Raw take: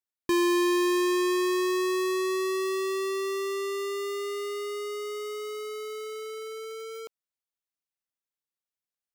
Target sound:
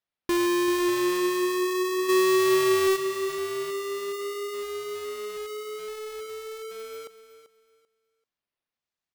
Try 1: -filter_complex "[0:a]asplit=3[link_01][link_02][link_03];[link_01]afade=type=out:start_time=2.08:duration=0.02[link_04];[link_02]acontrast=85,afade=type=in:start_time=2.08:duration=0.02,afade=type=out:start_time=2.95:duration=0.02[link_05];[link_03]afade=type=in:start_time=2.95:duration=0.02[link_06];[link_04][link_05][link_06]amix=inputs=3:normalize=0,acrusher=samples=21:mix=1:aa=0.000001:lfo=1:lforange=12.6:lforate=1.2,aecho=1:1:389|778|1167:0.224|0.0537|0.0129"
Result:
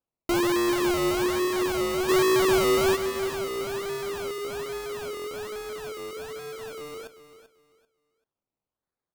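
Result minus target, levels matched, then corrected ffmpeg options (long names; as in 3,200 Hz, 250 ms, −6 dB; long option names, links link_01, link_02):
sample-and-hold swept by an LFO: distortion +10 dB
-filter_complex "[0:a]asplit=3[link_01][link_02][link_03];[link_01]afade=type=out:start_time=2.08:duration=0.02[link_04];[link_02]acontrast=85,afade=type=in:start_time=2.08:duration=0.02,afade=type=out:start_time=2.95:duration=0.02[link_05];[link_03]afade=type=in:start_time=2.95:duration=0.02[link_06];[link_04][link_05][link_06]amix=inputs=3:normalize=0,acrusher=samples=5:mix=1:aa=0.000001:lfo=1:lforange=3:lforate=1.2,aecho=1:1:389|778|1167:0.224|0.0537|0.0129"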